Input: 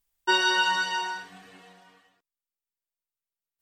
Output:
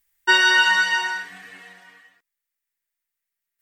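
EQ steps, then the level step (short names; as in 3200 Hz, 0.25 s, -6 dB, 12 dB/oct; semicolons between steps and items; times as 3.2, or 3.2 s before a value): bell 1900 Hz +14 dB 0.79 oct; high shelf 5800 Hz +9.5 dB; 0.0 dB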